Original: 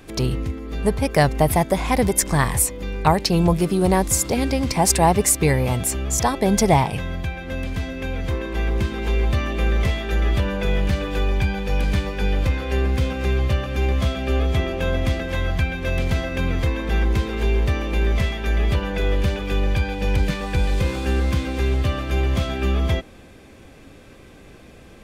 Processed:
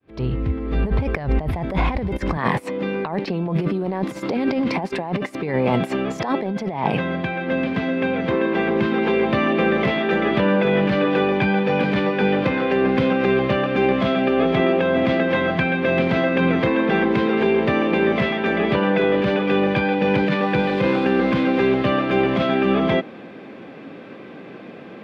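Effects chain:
fade in at the beginning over 0.96 s
high-pass filter 48 Hz 24 dB per octave, from 0:02.37 170 Hz
compressor whose output falls as the input rises −26 dBFS, ratio −1
high-frequency loss of the air 360 metres
level +8 dB

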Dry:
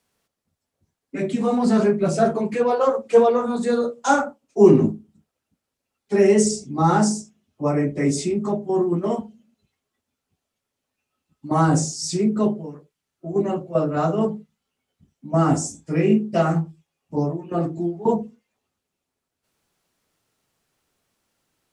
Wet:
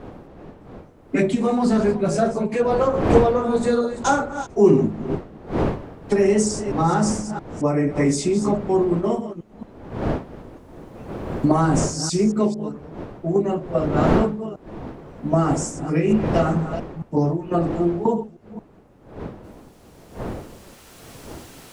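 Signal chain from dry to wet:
delay that plays each chunk backwards 224 ms, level −12 dB
camcorder AGC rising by 10 dB per second
wind on the microphone 450 Hz −28 dBFS
level −2 dB

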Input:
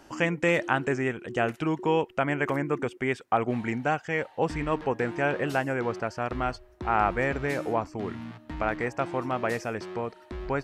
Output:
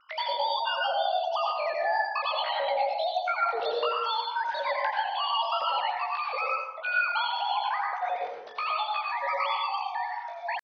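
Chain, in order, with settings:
three sine waves on the formant tracks
low-shelf EQ 220 Hz +3.5 dB
downward compressor 5 to 1, threshold −28 dBFS, peak gain reduction 11 dB
pitch shifter +10.5 semitones
dense smooth reverb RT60 1 s, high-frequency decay 0.45×, pre-delay 75 ms, DRR −2 dB
one half of a high-frequency compander decoder only

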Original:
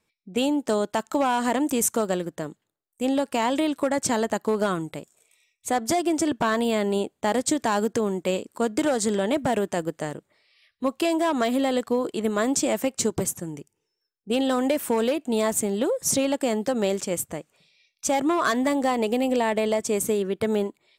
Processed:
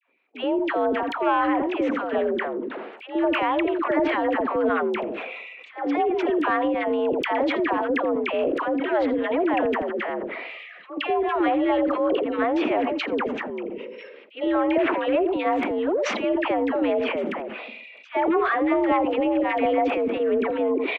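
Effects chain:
gain on a spectral selection 0:13.70–0:14.48, 570–1,800 Hz −10 dB
single-sideband voice off tune +61 Hz 200–2,700 Hz
transient designer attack −5 dB, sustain +11 dB
in parallel at +1 dB: downward compressor, threshold −39 dBFS, peak gain reduction 19 dB
on the sum: gate pattern "xxxx.xx." 117 BPM −12 dB
all-pass dispersion lows, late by 83 ms, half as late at 920 Hz
on a send: single-tap delay 83 ms −18 dB
on the sum: level that may fall only so fast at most 28 dB per second

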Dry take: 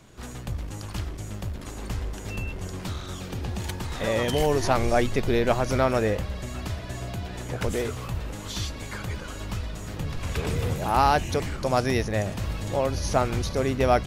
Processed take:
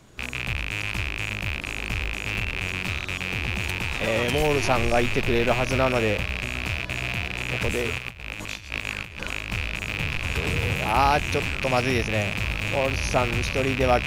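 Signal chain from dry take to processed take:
loose part that buzzes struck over −38 dBFS, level −15 dBFS
0:07.98–0:09.51: compressor whose output falls as the input rises −33 dBFS, ratio −0.5

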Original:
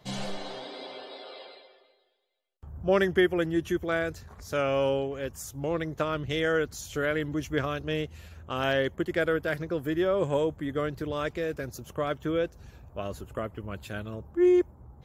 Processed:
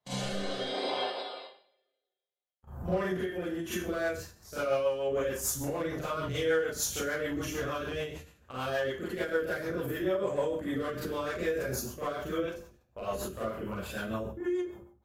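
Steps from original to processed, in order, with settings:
noise gate −42 dBFS, range −25 dB
downward compressor 16 to 1, threshold −29 dBFS, peak gain reduction 12 dB
parametric band 990 Hz +6 dB 2 octaves
asymmetric clip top −22 dBFS
brickwall limiter −28.5 dBFS, peak gain reduction 10 dB
high-shelf EQ 7,500 Hz +9.5 dB
mains-hum notches 50/100/150/200/250/300/350 Hz
four-comb reverb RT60 0.44 s, combs from 31 ms, DRR −9.5 dB
rotating-speaker cabinet horn 0.65 Hz, later 6.7 Hz, at 0:03.48
every ending faded ahead of time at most 120 dB per second
level −2.5 dB

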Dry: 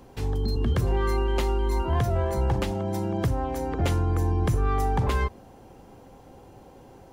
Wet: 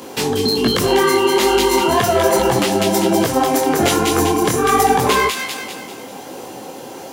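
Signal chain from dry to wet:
Chebyshev high-pass filter 260 Hz, order 2
high-shelf EQ 2,200 Hz +9.5 dB
delay with a high-pass on its return 197 ms, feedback 49%, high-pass 2,200 Hz, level −4.5 dB
in parallel at −0.5 dB: downward compressor, threshold −33 dBFS, peak gain reduction 10.5 dB
on the sum: boost into a limiter +15 dB
micro pitch shift up and down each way 43 cents

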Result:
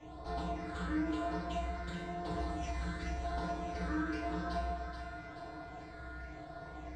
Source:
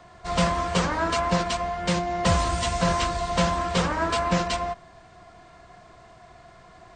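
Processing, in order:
downward compressor 5 to 1, threshold −37 dBFS, peak gain reduction 18 dB
all-pass phaser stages 8, 0.95 Hz, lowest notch 770–2,300 Hz
soft clipping −36.5 dBFS, distortion −13 dB
high-frequency loss of the air 70 metres
tuned comb filter 62 Hz, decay 0.83 s, harmonics odd, mix 90%
on a send: echo with a time of its own for lows and highs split 790 Hz, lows 160 ms, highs 430 ms, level −6 dB
on the sum: feedback delay network reverb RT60 0.42 s, low-frequency decay 0.7×, high-frequency decay 0.35×, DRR −8 dB
every ending faded ahead of time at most 110 dB per second
level +9 dB

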